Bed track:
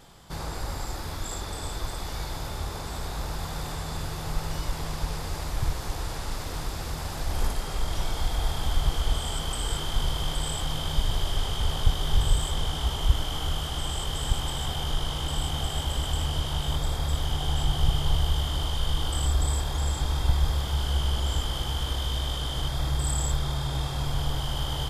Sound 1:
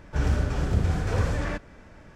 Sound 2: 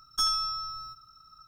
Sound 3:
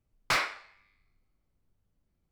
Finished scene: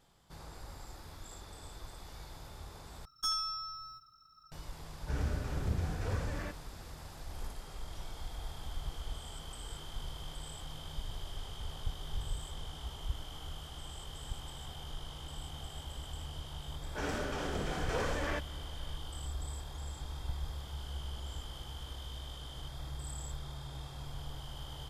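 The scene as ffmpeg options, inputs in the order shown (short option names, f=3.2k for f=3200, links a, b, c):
-filter_complex "[1:a]asplit=2[a][b];[0:a]volume=-15.5dB[c];[b]highpass=300[d];[c]asplit=2[e][f];[e]atrim=end=3.054[g];[2:a]atrim=end=1.47,asetpts=PTS-STARTPTS,volume=-7dB[h];[f]atrim=start=4.516[i];[a]atrim=end=2.15,asetpts=PTS-STARTPTS,volume=-10.5dB,afade=t=in:d=0.004:c=hsin,afade=t=out:st=2.146:d=0.004:c=hsin,adelay=4940[j];[d]atrim=end=2.15,asetpts=PTS-STARTPTS,volume=-3dB,afade=t=in:d=0.004:c=hsin,afade=t=out:st=2.146:d=0.004:c=hsin,adelay=16820[k];[g][h]acrossfade=d=0.004:c1=hsin:c2=hsin[l];[l][i]acrossfade=d=0.004:c1=hsin:c2=hsin[m];[m][j][k]amix=inputs=3:normalize=0"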